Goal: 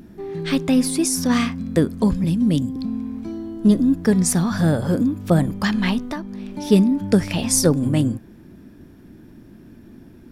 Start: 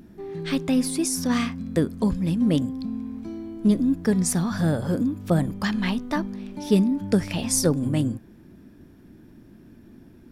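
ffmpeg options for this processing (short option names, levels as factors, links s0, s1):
-filter_complex "[0:a]asettb=1/sr,asplit=3[s0][s1][s2];[s0]atrim=end=2.244[s3];[s1]atrim=start=2.24:end=2.76,asetpts=PTS-STARTPTS,afade=t=in:d=0.004:c=qsin,afade=t=out:st=0.516:d=0.004:c=qsin,acrossover=split=290|3000[s4][s5][s6];[s5]acompressor=threshold=0.00794:ratio=2[s7];[s4][s7][s6]amix=inputs=3:normalize=0[s8];[s2]atrim=start=2.756[s9];[s3][s8]acrossfade=d=0.004:c1=hsin:c2=qsin[s10];[s10][s9]acrossfade=d=0.004:c1=qsin:c2=hsin,asettb=1/sr,asplit=3[s11][s12][s13];[s11]atrim=end=3.314[s14];[s12]atrim=start=3.31:end=3.98,asetpts=PTS-STARTPTS,afade=t=in:d=0.004:c=qsin,afade=t=out:st=0.666:d=0.004:c=qsin,bandreject=f=2300:w=6.8[s15];[s13]atrim=start=3.976[s16];[s14][s15]acrossfade=d=0.004:c1=hsin:c2=qsin[s17];[s17][s16]acrossfade=d=0.004:c1=qsin:c2=hsin,asettb=1/sr,asplit=3[s18][s19][s20];[s18]atrim=end=6.044[s21];[s19]atrim=start=6.04:end=6.55,asetpts=PTS-STARTPTS,afade=t=in:d=0.004:c=qsin,afade=t=out:st=0.506:d=0.004:c=qsin,acompressor=threshold=0.0282:ratio=4[s22];[s20]atrim=start=6.546[s23];[s21][s22]acrossfade=d=0.004:c1=hsin:c2=qsin[s24];[s24][s23]acrossfade=d=0.004:c1=qsin:c2=hsin,volume=1.68"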